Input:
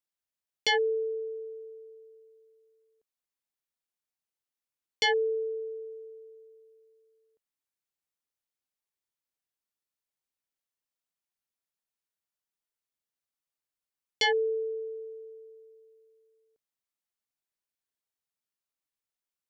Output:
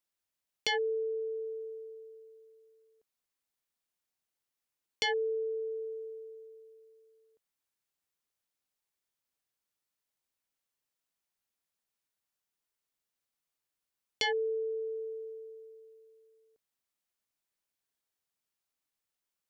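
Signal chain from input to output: compression 2:1, threshold -39 dBFS, peak gain reduction 9 dB; trim +3 dB

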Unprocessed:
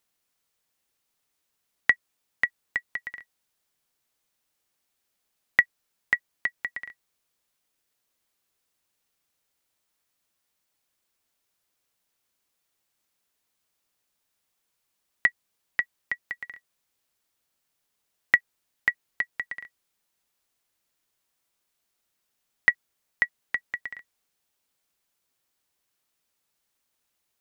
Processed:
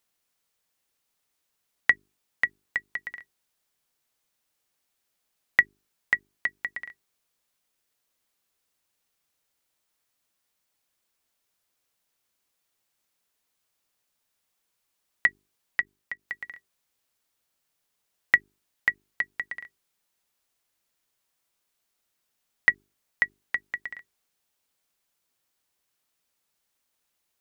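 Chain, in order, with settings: 15.80–16.28 s: level held to a coarse grid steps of 16 dB; hum notches 50/100/150/200/250/300/350/400 Hz

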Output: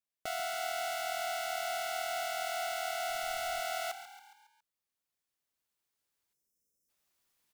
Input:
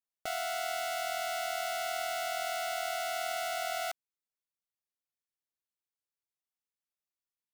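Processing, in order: recorder AGC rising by 5.2 dB/s; 6.33–6.89 s: spectral selection erased 570–5000 Hz; on a send: frequency-shifting echo 138 ms, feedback 52%, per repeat +37 Hz, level -12 dB; 3.09–3.60 s: on the sum: added noise brown -57 dBFS; trim -1.5 dB

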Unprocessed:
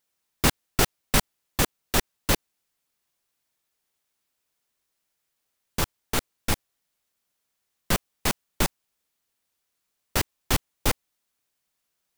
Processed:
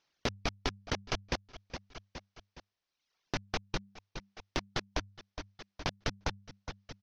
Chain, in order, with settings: steep low-pass 3.5 kHz 72 dB/octave; on a send: feedback delay 719 ms, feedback 39%, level -20 dB; on the sum: reverb removal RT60 1.8 s; in parallel at -8 dB: hard clipper -19 dBFS, distortion -11 dB; on the sum: de-hum 57.3 Hz, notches 2; compression 2.5:1, threshold -44 dBFS, peak gain reduction 18.5 dB; speed mistake 45 rpm record played at 78 rpm; trim +5.5 dB

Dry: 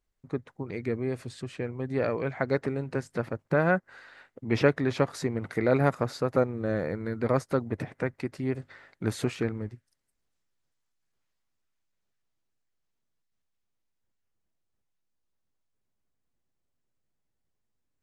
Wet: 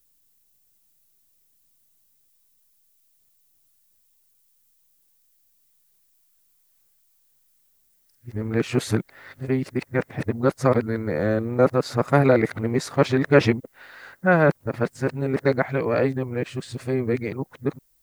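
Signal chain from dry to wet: reverse the whole clip; added noise violet -71 dBFS; trim +6.5 dB

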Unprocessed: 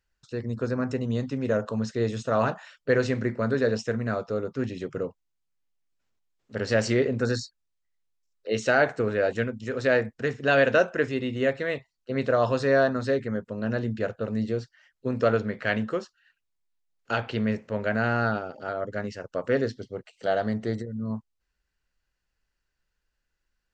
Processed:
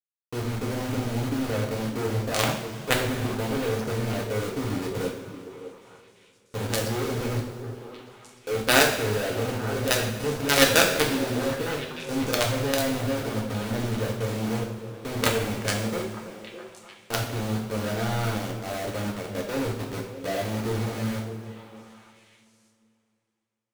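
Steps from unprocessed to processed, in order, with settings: local Wiener filter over 41 samples; treble shelf 5.7 kHz -5 dB; companded quantiser 2-bit; on a send: repeats whose band climbs or falls 302 ms, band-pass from 150 Hz, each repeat 1.4 oct, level -6.5 dB; on the sum: two-slope reverb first 0.57 s, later 2.9 s, from -14 dB, DRR -0.5 dB; trim -5 dB

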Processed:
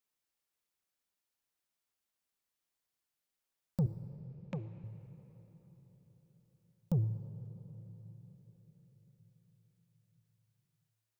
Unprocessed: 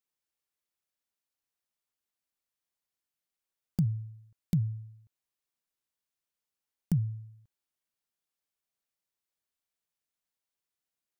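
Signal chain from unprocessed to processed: saturation -26.5 dBFS, distortion -12 dB; 3.86–4.84 s: cabinet simulation 250–5400 Hz, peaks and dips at 430 Hz -4 dB, 1.1 kHz +5 dB, 1.7 kHz +4 dB, 2.4 kHz +9 dB, 4.9 kHz -9 dB; reverberation RT60 4.6 s, pre-delay 16 ms, DRR 11 dB; trim +1 dB

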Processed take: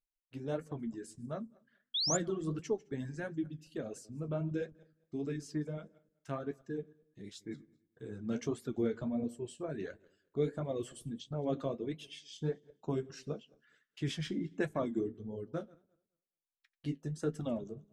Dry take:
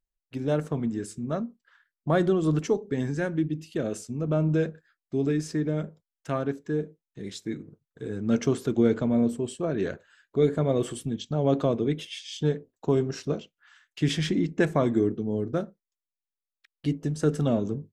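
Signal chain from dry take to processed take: backward echo that repeats 105 ms, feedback 42%, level -12 dB; reverb removal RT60 1.2 s; flange 1.5 Hz, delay 7.8 ms, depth 7.2 ms, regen -45%; painted sound rise, 1.94–2.17 s, 3.2–7.5 kHz -26 dBFS; trim -6.5 dB

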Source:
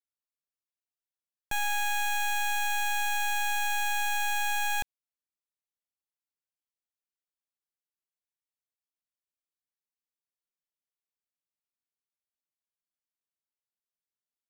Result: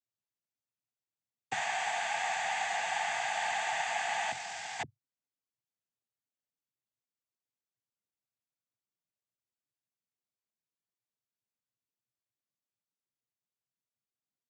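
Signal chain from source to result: bass shelf 460 Hz +11.5 dB; 4.31–4.79 s: waveshaping leveller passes 5; noise-vocoded speech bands 16; trim -4 dB

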